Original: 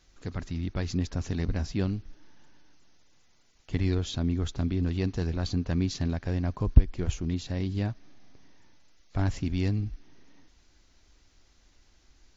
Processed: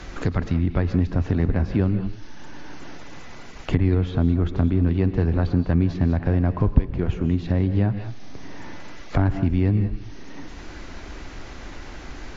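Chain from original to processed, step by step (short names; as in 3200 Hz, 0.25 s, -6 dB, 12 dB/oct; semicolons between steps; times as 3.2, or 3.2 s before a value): non-linear reverb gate 0.22 s rising, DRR 10.5 dB; treble ducked by the level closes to 1800 Hz, closed at -26.5 dBFS; three-band squash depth 70%; gain +8 dB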